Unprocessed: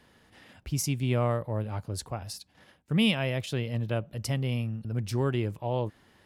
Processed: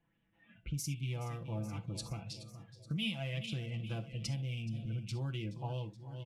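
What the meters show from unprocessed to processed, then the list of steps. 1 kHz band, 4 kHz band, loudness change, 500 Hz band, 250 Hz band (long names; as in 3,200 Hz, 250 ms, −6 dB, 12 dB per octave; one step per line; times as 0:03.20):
−12.5 dB, −7.5 dB, −9.5 dB, −15.5 dB, −11.5 dB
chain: adaptive Wiener filter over 9 samples
low-pass that shuts in the quiet parts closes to 2,600 Hz, open at −25 dBFS
flat-topped bell 790 Hz −9.5 dB 2.7 octaves
comb filter 6 ms, depth 84%
repeating echo 424 ms, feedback 55%, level −17 dB
downward compressor 5 to 1, threshold −35 dBFS, peak gain reduction 15.5 dB
noise reduction from a noise print of the clip's start 14 dB
reverb whose tail is shaped and stops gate 90 ms flat, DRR 11 dB
auto-filter bell 2.5 Hz 700–3,300 Hz +7 dB
level −1.5 dB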